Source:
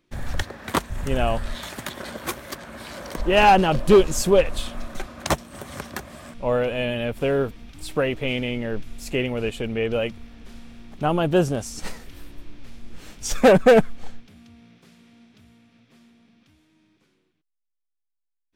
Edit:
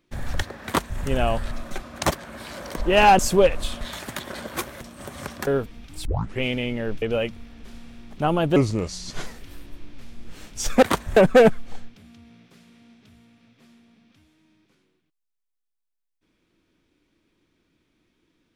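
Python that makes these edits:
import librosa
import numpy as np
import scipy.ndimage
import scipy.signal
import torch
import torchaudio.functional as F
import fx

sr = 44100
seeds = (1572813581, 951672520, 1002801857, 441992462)

y = fx.edit(x, sr, fx.duplicate(start_s=0.66, length_s=0.34, to_s=13.48),
    fx.swap(start_s=1.51, length_s=1.0, other_s=4.75, other_length_s=0.6),
    fx.cut(start_s=3.59, length_s=0.54),
    fx.cut(start_s=6.01, length_s=1.31),
    fx.tape_start(start_s=7.9, length_s=0.37),
    fx.cut(start_s=8.87, length_s=0.96),
    fx.speed_span(start_s=11.37, length_s=0.55, speed=0.78), tone=tone)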